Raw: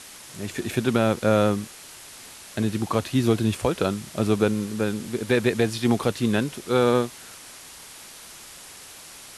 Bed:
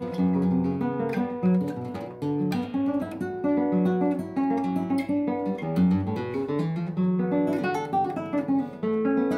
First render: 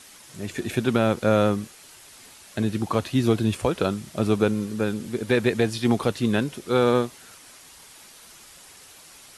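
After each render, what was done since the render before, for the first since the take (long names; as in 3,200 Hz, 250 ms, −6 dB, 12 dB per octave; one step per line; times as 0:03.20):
broadband denoise 6 dB, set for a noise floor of −44 dBFS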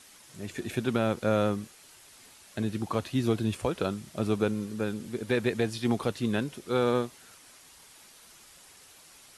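level −6 dB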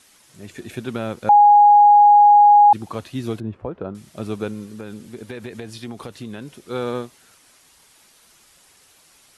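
0:01.29–0:02.73: beep over 826 Hz −7 dBFS
0:03.40–0:03.95: low-pass filter 1,100 Hz
0:04.75–0:06.54: downward compressor, threshold −28 dBFS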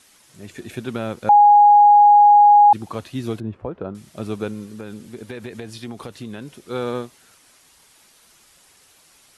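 no processing that can be heard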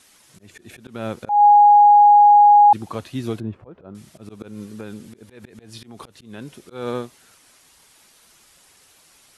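volume swells 193 ms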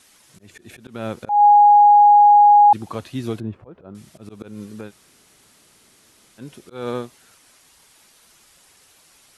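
0:04.89–0:06.40: fill with room tone, crossfade 0.06 s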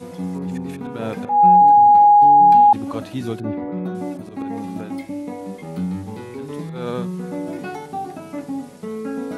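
mix in bed −3.5 dB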